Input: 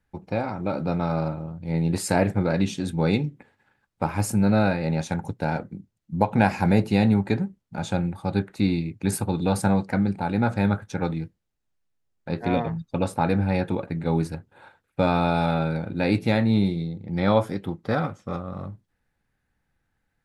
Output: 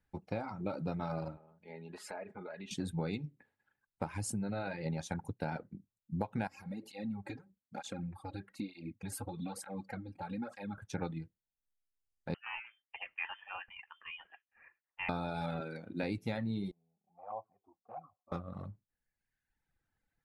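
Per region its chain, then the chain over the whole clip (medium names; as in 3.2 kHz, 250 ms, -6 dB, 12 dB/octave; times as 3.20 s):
1.37–2.71 s: three-band isolator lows -16 dB, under 350 Hz, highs -16 dB, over 3.2 kHz + comb 4.8 ms, depth 58% + compression 3:1, threshold -37 dBFS
4.04–4.86 s: treble shelf 9.9 kHz +3 dB + compression 2:1, threshold -25 dBFS + careless resampling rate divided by 2×, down none, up filtered
6.47–10.78 s: comb 3.7 ms, depth 50% + compression 5:1, threshold -27 dBFS + cancelling through-zero flanger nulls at 1.1 Hz, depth 5.6 ms
12.34–15.09 s: high-pass 1.2 kHz + frequency inversion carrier 3.3 kHz
15.60–16.03 s: high-pass 160 Hz + band-stop 860 Hz, Q 10
16.71–18.32 s: cascade formant filter a + touch-sensitive flanger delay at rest 5.6 ms, full sweep at -28 dBFS
whole clip: reverb removal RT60 1.2 s; compression, threshold -26 dBFS; trim -6.5 dB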